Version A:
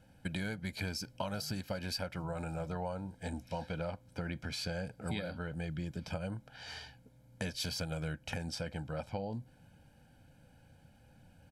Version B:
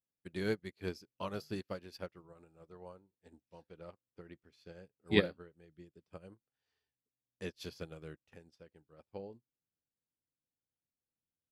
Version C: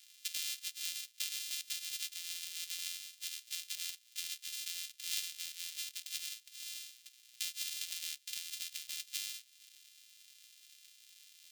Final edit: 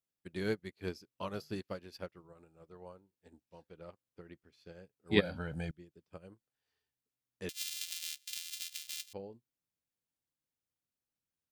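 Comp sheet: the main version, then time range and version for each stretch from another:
B
5.21–5.71 s: from A
7.49–9.13 s: from C

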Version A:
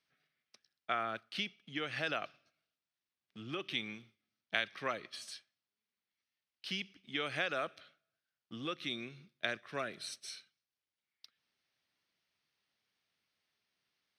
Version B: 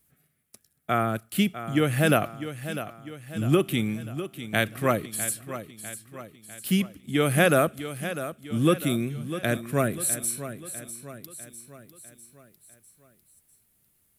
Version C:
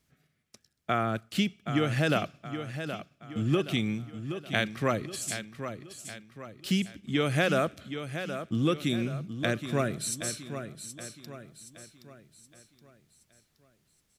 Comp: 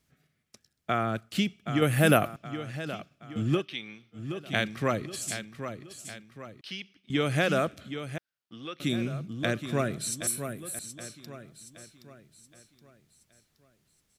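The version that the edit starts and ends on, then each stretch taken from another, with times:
C
1.82–2.36 s: from B
3.61–4.16 s: from A, crossfade 0.10 s
6.61–7.10 s: from A
8.18–8.80 s: from A
10.27–10.79 s: from B

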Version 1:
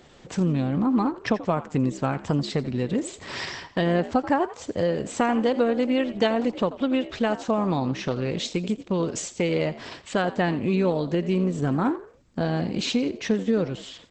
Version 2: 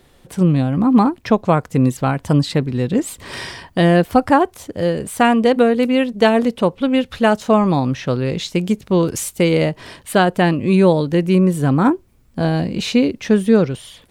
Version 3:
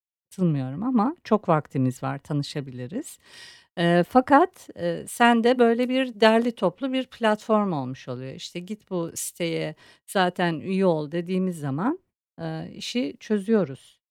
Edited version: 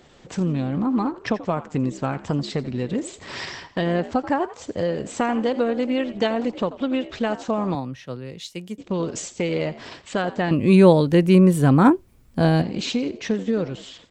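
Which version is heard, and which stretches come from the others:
1
7.75–8.78 s: from 3
10.51–12.62 s: from 2

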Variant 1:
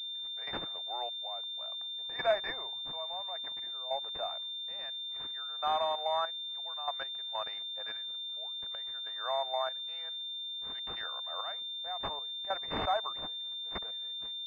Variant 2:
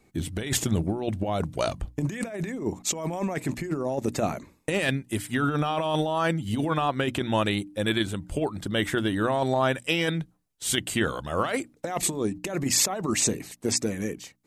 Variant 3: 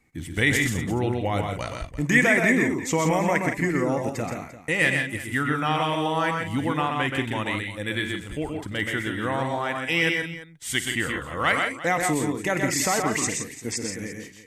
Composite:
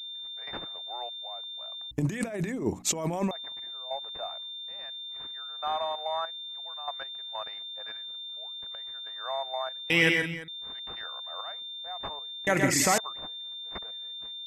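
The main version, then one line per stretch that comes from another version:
1
1.91–3.31 s: from 2
9.90–10.48 s: from 3
12.47–12.98 s: from 3

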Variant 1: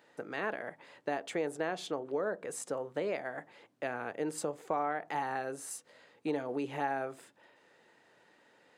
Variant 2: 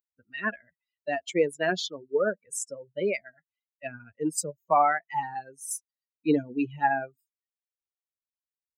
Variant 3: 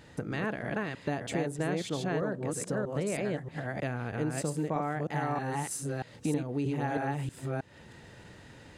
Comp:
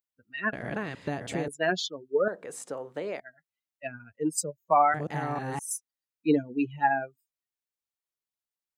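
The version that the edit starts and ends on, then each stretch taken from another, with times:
2
0.53–1.48 s: from 3
2.28–3.20 s: from 1
4.94–5.59 s: from 3

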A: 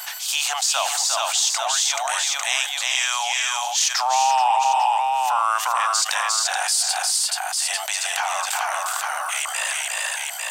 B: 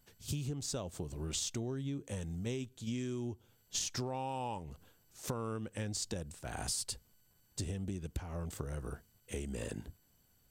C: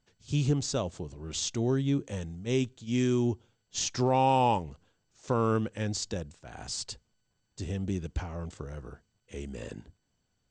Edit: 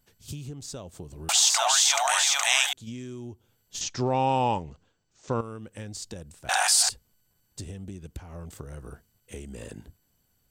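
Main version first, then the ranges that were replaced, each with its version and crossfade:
B
1.29–2.73 s: from A
3.81–5.41 s: from C
6.49–6.89 s: from A

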